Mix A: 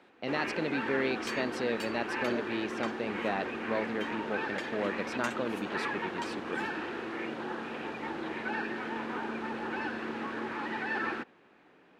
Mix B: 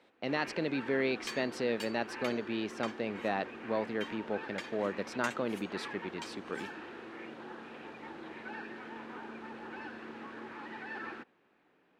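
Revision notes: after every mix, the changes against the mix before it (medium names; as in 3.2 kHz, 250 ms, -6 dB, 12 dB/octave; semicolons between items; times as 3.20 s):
first sound -9.0 dB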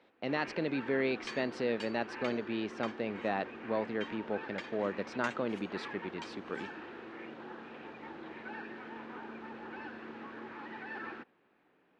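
master: add distance through air 100 m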